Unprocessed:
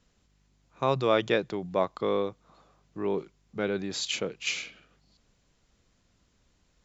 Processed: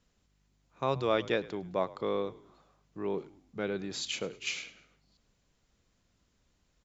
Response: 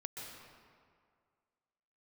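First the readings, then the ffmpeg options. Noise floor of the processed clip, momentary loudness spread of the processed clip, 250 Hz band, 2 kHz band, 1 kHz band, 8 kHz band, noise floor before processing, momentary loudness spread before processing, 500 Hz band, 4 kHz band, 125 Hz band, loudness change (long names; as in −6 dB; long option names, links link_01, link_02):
−74 dBFS, 10 LU, −4.5 dB, −4.5 dB, −4.5 dB, can't be measured, −70 dBFS, 10 LU, −4.5 dB, −4.5 dB, −4.5 dB, −4.5 dB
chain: -filter_complex "[0:a]asplit=4[link_01][link_02][link_03][link_04];[link_02]adelay=105,afreqshift=-46,volume=-19.5dB[link_05];[link_03]adelay=210,afreqshift=-92,volume=-27dB[link_06];[link_04]adelay=315,afreqshift=-138,volume=-34.6dB[link_07];[link_01][link_05][link_06][link_07]amix=inputs=4:normalize=0,volume=-4.5dB"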